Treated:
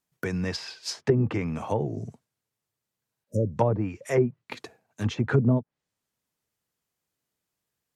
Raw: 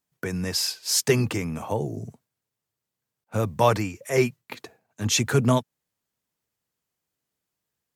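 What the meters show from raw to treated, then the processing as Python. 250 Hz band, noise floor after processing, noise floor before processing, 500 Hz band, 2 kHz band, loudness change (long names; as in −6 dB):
0.0 dB, below −85 dBFS, below −85 dBFS, −2.0 dB, −5.0 dB, −2.5 dB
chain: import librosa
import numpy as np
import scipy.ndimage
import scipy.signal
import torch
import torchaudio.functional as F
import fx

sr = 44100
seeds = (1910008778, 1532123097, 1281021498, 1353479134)

y = fx.spec_repair(x, sr, seeds[0], start_s=3.1, length_s=0.45, low_hz=630.0, high_hz=5000.0, source='before')
y = fx.env_lowpass_down(y, sr, base_hz=450.0, full_db=-16.5)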